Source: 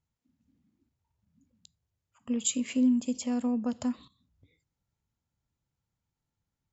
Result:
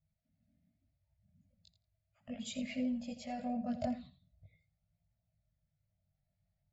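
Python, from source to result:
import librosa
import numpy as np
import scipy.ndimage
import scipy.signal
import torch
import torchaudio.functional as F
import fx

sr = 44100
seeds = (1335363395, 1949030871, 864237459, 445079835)

y = fx.spec_quant(x, sr, step_db=15)
y = fx.curve_eq(y, sr, hz=(180.0, 410.0, 630.0, 970.0, 2100.0, 3000.0, 4400.0, 8500.0), db=(0, -28, 10, -21, -3, -11, -6, -26))
y = fx.echo_feedback(y, sr, ms=84, feedback_pct=15, wet_db=-12.5)
y = fx.chorus_voices(y, sr, voices=2, hz=0.39, base_ms=20, depth_ms=1.7, mix_pct=55)
y = y * librosa.db_to_amplitude(5.0)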